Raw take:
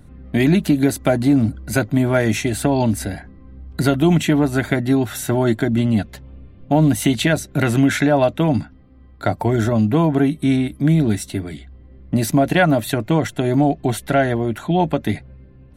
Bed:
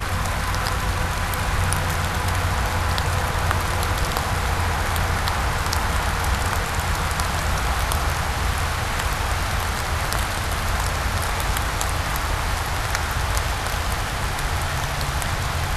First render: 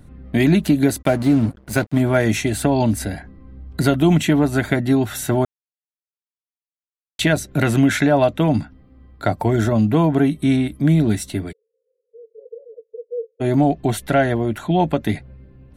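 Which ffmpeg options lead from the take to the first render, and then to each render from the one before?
-filter_complex "[0:a]asplit=3[a][b][c];[a]afade=t=out:st=1.01:d=0.02[d];[b]aeval=exprs='sgn(val(0))*max(abs(val(0))-0.0237,0)':c=same,afade=t=in:st=1.01:d=0.02,afade=t=out:st=2:d=0.02[e];[c]afade=t=in:st=2:d=0.02[f];[d][e][f]amix=inputs=3:normalize=0,asplit=3[g][h][i];[g]afade=t=out:st=11.51:d=0.02[j];[h]asuperpass=centerf=470:order=8:qfactor=6.8,afade=t=in:st=11.51:d=0.02,afade=t=out:st=13.4:d=0.02[k];[i]afade=t=in:st=13.4:d=0.02[l];[j][k][l]amix=inputs=3:normalize=0,asplit=3[m][n][o];[m]atrim=end=5.45,asetpts=PTS-STARTPTS,afade=t=out:st=5.446:d=0.004:c=hsin[p];[n]atrim=start=5.45:end=7.19,asetpts=PTS-STARTPTS,volume=0[q];[o]atrim=start=7.19,asetpts=PTS-STARTPTS,afade=t=in:d=0.004:c=hsin[r];[p][q][r]concat=n=3:v=0:a=1"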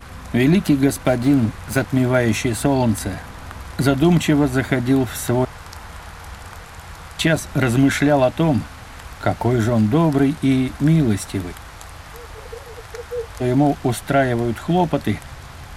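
-filter_complex "[1:a]volume=-14dB[a];[0:a][a]amix=inputs=2:normalize=0"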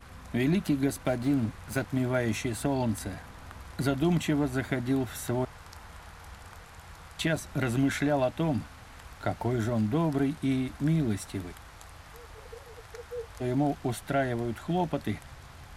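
-af "volume=-11dB"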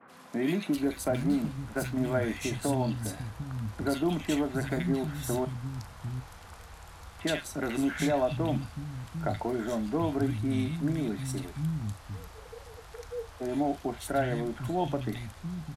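-filter_complex "[0:a]asplit=2[a][b];[b]adelay=39,volume=-13.5dB[c];[a][c]amix=inputs=2:normalize=0,acrossover=split=180|1900[d][e][f];[f]adelay=80[g];[d]adelay=750[h];[h][e][g]amix=inputs=3:normalize=0"

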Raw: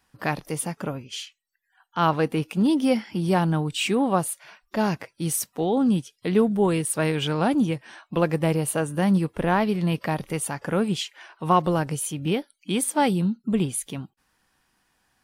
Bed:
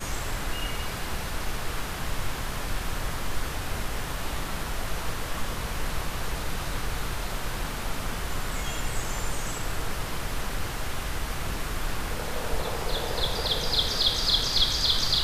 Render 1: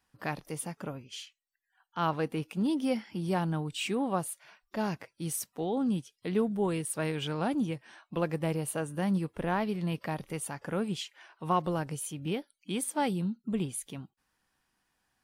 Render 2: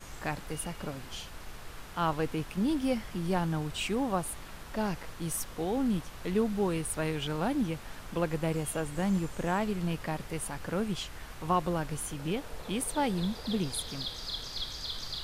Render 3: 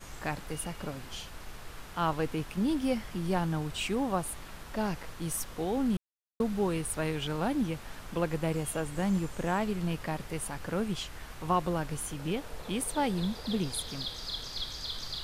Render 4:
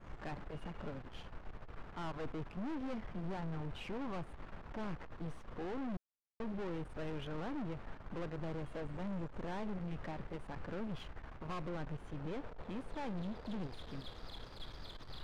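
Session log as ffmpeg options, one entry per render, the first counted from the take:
-af "volume=-8.5dB"
-filter_complex "[1:a]volume=-14dB[a];[0:a][a]amix=inputs=2:normalize=0"
-filter_complex "[0:a]asplit=3[a][b][c];[a]atrim=end=5.97,asetpts=PTS-STARTPTS,afade=t=out:st=5.966:d=0.004:c=hsin[d];[b]atrim=start=5.97:end=6.4,asetpts=PTS-STARTPTS,volume=0[e];[c]atrim=start=6.4,asetpts=PTS-STARTPTS,afade=t=in:d=0.004:c=hsin[f];[d][e][f]concat=n=3:v=0:a=1"
-af "aeval=exprs='(tanh(89.1*val(0)+0.6)-tanh(0.6))/89.1':c=same,adynamicsmooth=sensitivity=7.5:basefreq=1.4k"

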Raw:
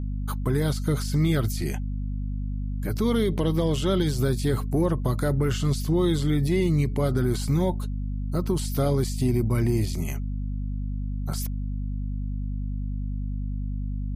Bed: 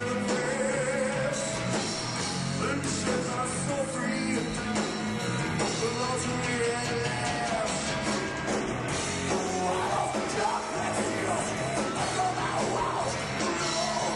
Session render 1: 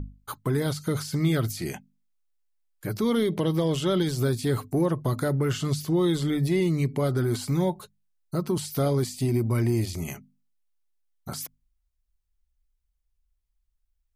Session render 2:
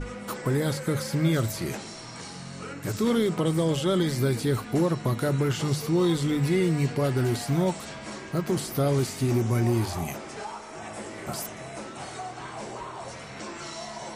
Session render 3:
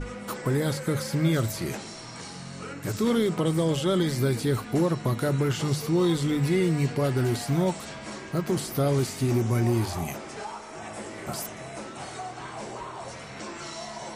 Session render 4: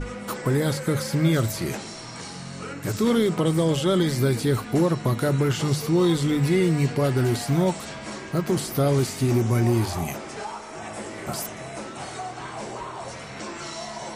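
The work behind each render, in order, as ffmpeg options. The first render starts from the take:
-af "bandreject=f=50:t=h:w=6,bandreject=f=100:t=h:w=6,bandreject=f=150:t=h:w=6,bandreject=f=200:t=h:w=6,bandreject=f=250:t=h:w=6"
-filter_complex "[1:a]volume=-9dB[a];[0:a][a]amix=inputs=2:normalize=0"
-af anull
-af "volume=3dB"

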